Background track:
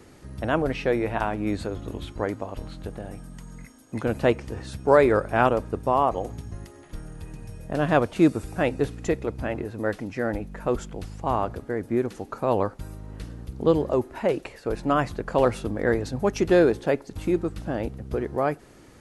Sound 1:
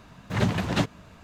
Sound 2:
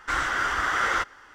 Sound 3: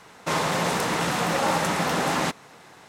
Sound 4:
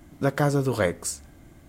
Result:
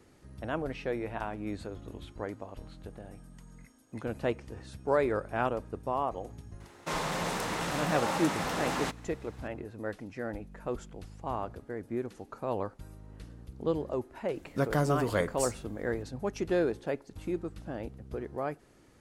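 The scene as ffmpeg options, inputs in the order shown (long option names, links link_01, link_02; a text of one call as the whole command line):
ffmpeg -i bed.wav -i cue0.wav -i cue1.wav -i cue2.wav -i cue3.wav -filter_complex "[0:a]volume=-10dB[link_01];[3:a]atrim=end=2.88,asetpts=PTS-STARTPTS,volume=-8.5dB,afade=type=in:duration=0.004:curve=hsin,afade=type=out:start_time=2.876:duration=0.004:curve=hsin,adelay=6600[link_02];[4:a]atrim=end=1.68,asetpts=PTS-STARTPTS,volume=-5.5dB,afade=type=in:duration=0.004:curve=hsin,afade=type=out:start_time=1.676:duration=0.004:curve=hsin,adelay=14350[link_03];[link_01][link_02][link_03]amix=inputs=3:normalize=0" out.wav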